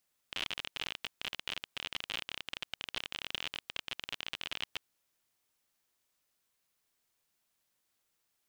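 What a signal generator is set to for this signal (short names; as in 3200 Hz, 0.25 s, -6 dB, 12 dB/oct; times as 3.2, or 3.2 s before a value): random clicks 38/s -20 dBFS 4.50 s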